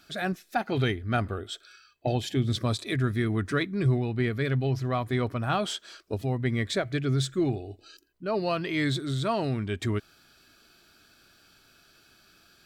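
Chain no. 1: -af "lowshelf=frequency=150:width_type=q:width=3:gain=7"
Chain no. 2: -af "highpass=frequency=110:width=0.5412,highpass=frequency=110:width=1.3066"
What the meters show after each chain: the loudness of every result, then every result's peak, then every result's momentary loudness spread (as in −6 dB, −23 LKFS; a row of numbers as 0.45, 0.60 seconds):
−22.0, −29.5 LKFS; −6.0, −11.5 dBFS; 14, 8 LU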